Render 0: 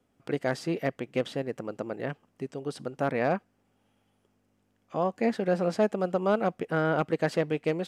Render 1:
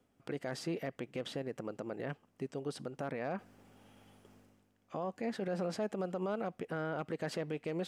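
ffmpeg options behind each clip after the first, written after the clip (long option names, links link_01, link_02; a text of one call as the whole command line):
ffmpeg -i in.wav -af "alimiter=level_in=1.5dB:limit=-24dB:level=0:latency=1:release=58,volume=-1.5dB,areverse,acompressor=mode=upward:threshold=-45dB:ratio=2.5,areverse,volume=-3dB" out.wav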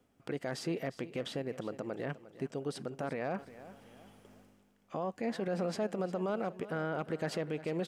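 ffmpeg -i in.wav -af "aecho=1:1:355|710|1065:0.158|0.0602|0.0229,volume=2dB" out.wav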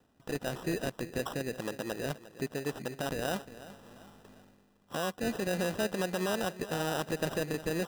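ffmpeg -i in.wav -af "lowpass=frequency=2800:width_type=q:width=2.7,acrusher=samples=20:mix=1:aa=0.000001,volume=2dB" out.wav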